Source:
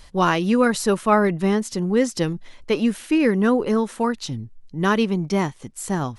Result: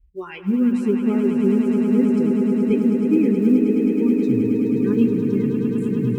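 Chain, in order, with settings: local Wiener filter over 9 samples; high-pass 50 Hz 24 dB/octave; de-hum 110.5 Hz, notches 13; spectral noise reduction 28 dB; FFT filter 110 Hz 0 dB, 210 Hz -1 dB, 390 Hz -2 dB, 570 Hz -24 dB, 1.7 kHz -23 dB, 2.6 kHz -8 dB, 4.4 kHz -29 dB, 8.3 kHz -22 dB, 12 kHz -29 dB; in parallel at 0 dB: compression 12:1, threshold -31 dBFS, peak gain reduction 15 dB; on the sum: flange 0.52 Hz, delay 5.3 ms, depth 9.5 ms, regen +46%; short-mantissa float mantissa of 6-bit; echo with a slow build-up 106 ms, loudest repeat 8, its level -9 dB; on a send at -14.5 dB: reverberation RT60 1.5 s, pre-delay 76 ms; on the sum: trim +5.5 dB

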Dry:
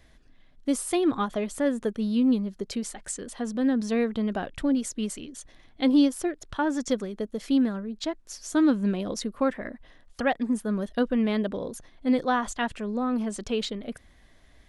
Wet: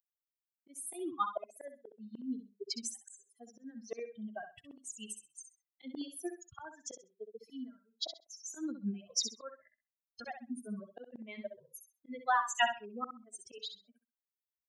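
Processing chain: expander on every frequency bin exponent 3; reverb removal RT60 0.89 s; slow attack 791 ms; Bessel high-pass 420 Hz, order 2; on a send: feedback delay 65 ms, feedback 21%, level -8.5 dB; on the sum: trim +10.5 dB

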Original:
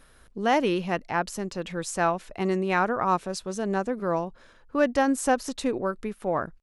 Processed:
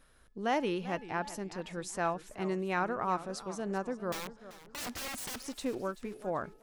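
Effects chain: de-hum 429.1 Hz, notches 13; 4.12–5.46 s: integer overflow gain 26.5 dB; modulated delay 389 ms, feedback 34%, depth 159 cents, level -15 dB; trim -8 dB

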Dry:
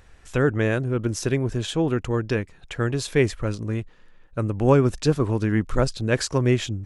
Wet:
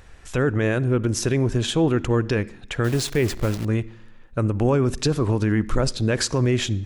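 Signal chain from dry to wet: 2.84–3.65 s: send-on-delta sampling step -34 dBFS; peak limiter -15.5 dBFS, peak gain reduction 10 dB; on a send: reverberation RT60 0.70 s, pre-delay 46 ms, DRR 20 dB; on the sum: trim +4.5 dB

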